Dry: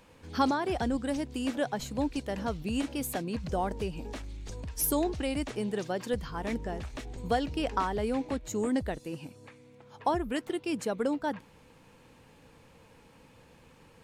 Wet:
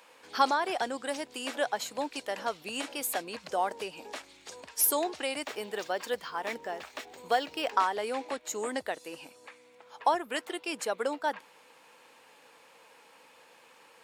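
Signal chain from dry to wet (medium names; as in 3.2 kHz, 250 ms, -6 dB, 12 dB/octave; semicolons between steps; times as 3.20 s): high-pass 620 Hz 12 dB/octave; band-stop 6.1 kHz, Q 25; 5.43–7.72 s: decimation joined by straight lines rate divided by 2×; trim +4.5 dB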